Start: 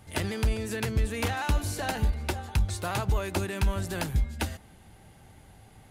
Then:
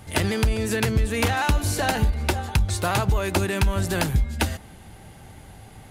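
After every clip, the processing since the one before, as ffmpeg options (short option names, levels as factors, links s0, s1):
-af "acompressor=threshold=0.0562:ratio=6,volume=2.66"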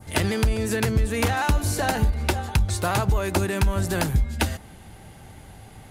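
-af "adynamicequalizer=threshold=0.00891:dfrequency=3000:dqfactor=1.1:tfrequency=3000:tqfactor=1.1:attack=5:release=100:ratio=0.375:range=2:mode=cutabove:tftype=bell"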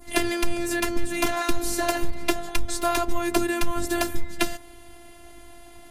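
-af "afftfilt=real='hypot(re,im)*cos(PI*b)':imag='0':win_size=512:overlap=0.75,volume=1.58"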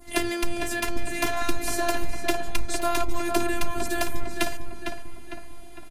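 -filter_complex "[0:a]asplit=2[s0][s1];[s1]adelay=454,lowpass=f=3300:p=1,volume=0.531,asplit=2[s2][s3];[s3]adelay=454,lowpass=f=3300:p=1,volume=0.52,asplit=2[s4][s5];[s5]adelay=454,lowpass=f=3300:p=1,volume=0.52,asplit=2[s6][s7];[s7]adelay=454,lowpass=f=3300:p=1,volume=0.52,asplit=2[s8][s9];[s9]adelay=454,lowpass=f=3300:p=1,volume=0.52,asplit=2[s10][s11];[s11]adelay=454,lowpass=f=3300:p=1,volume=0.52,asplit=2[s12][s13];[s13]adelay=454,lowpass=f=3300:p=1,volume=0.52[s14];[s0][s2][s4][s6][s8][s10][s12][s14]amix=inputs=8:normalize=0,volume=0.794"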